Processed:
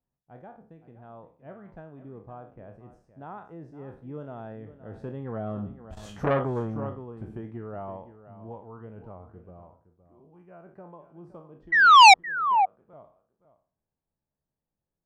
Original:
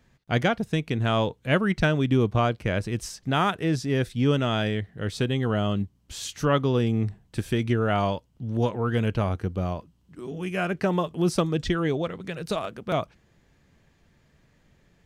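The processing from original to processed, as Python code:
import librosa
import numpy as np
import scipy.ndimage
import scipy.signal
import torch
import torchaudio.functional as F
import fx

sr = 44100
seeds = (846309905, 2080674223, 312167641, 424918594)

p1 = fx.spec_trails(x, sr, decay_s=0.41)
p2 = fx.doppler_pass(p1, sr, speed_mps=11, closest_m=1.6, pass_at_s=6.09)
p3 = fx.low_shelf(p2, sr, hz=230.0, db=7.5)
p4 = fx.notch(p3, sr, hz=2200.0, q=25.0)
p5 = fx.spec_paint(p4, sr, seeds[0], shape='fall', start_s=11.72, length_s=0.42, low_hz=730.0, high_hz=2000.0, level_db=-15.0)
p6 = fx.curve_eq(p5, sr, hz=(100.0, 420.0, 840.0, 3900.0), db=(0, 7, 13, -17))
p7 = p6 + fx.echo_single(p6, sr, ms=516, db=-14.0, dry=0)
p8 = fx.transformer_sat(p7, sr, knee_hz=2400.0)
y = F.gain(torch.from_numpy(p8), -2.0).numpy()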